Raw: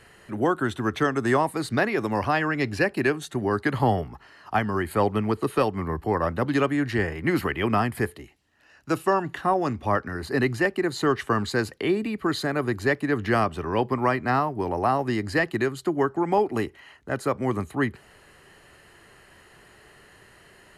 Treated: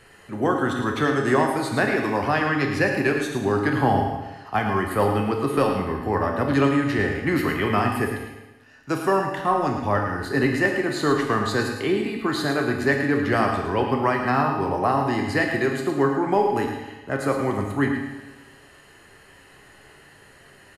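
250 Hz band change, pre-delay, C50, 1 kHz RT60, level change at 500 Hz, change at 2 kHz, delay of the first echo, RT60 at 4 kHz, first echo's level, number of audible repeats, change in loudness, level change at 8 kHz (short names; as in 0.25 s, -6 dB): +2.5 dB, 7 ms, 3.5 dB, 1.1 s, +2.0 dB, +3.0 dB, 0.109 s, 1.1 s, -9.0 dB, 1, +2.5 dB, +2.5 dB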